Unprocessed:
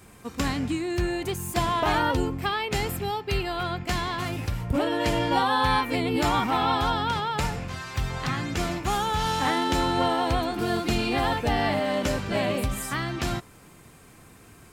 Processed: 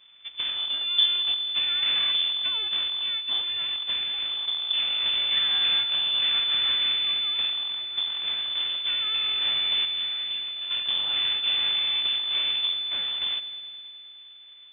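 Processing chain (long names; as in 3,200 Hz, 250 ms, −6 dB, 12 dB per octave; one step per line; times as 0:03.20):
loose part that buzzes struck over −34 dBFS, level −24 dBFS
0:00.86–0:01.36: low-shelf EQ 200 Hz +9.5 dB
0:09.85–0:10.71: tuned comb filter 270 Hz, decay 1 s, mix 60%
full-wave rectification
high-frequency loss of the air 280 metres
echo machine with several playback heads 104 ms, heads first and second, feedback 65%, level −19 dB
voice inversion scrambler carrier 3,500 Hz
level −5 dB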